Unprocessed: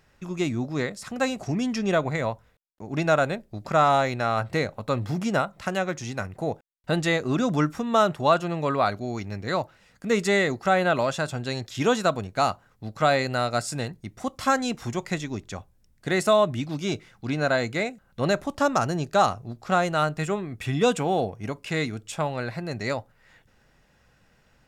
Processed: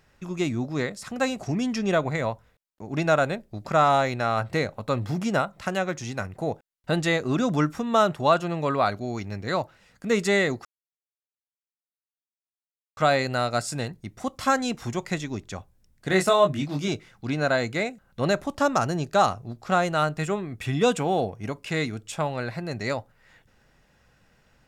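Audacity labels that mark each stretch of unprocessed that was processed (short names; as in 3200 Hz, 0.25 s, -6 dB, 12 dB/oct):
10.650000	12.970000	mute
16.080000	16.880000	doubler 21 ms -4 dB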